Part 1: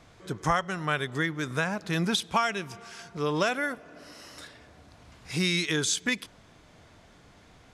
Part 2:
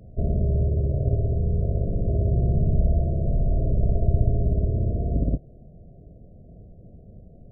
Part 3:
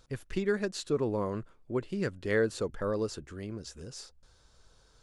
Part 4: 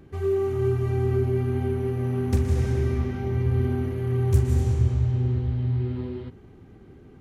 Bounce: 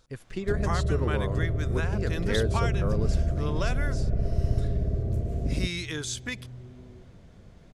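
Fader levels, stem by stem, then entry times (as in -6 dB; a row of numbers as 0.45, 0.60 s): -6.5, -5.0, -1.5, -18.5 dB; 0.20, 0.30, 0.00, 0.80 s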